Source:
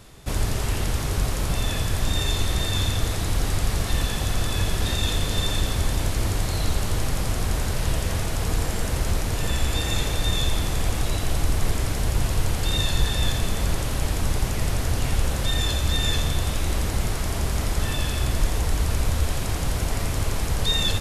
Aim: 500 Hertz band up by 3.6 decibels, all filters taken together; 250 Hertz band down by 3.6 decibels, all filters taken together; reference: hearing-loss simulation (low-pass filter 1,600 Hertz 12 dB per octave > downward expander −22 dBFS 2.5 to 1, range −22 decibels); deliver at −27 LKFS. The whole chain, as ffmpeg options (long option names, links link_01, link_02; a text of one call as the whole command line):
ffmpeg -i in.wav -af "lowpass=1600,equalizer=frequency=250:width_type=o:gain=-7.5,equalizer=frequency=500:width_type=o:gain=6.5,agate=range=-22dB:threshold=-22dB:ratio=2.5,volume=0.5dB" out.wav